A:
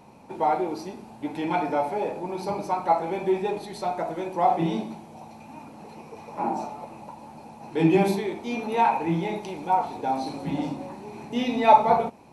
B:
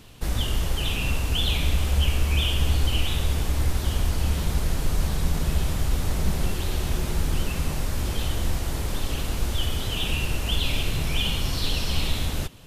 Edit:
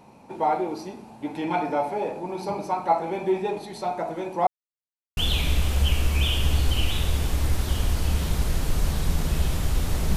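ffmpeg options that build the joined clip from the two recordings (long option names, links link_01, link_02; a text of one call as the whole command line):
ffmpeg -i cue0.wav -i cue1.wav -filter_complex "[0:a]apad=whole_dur=10.16,atrim=end=10.16,asplit=2[link_01][link_02];[link_01]atrim=end=4.47,asetpts=PTS-STARTPTS,afade=type=out:start_time=4.466:duration=0.004:curve=hsin[link_03];[link_02]atrim=start=4.47:end=5.17,asetpts=PTS-STARTPTS,volume=0[link_04];[1:a]atrim=start=1.33:end=6.32,asetpts=PTS-STARTPTS,afade=type=in:duration=0.004:curve=hsin[link_05];[link_03][link_04][link_05]concat=n=3:v=0:a=1" out.wav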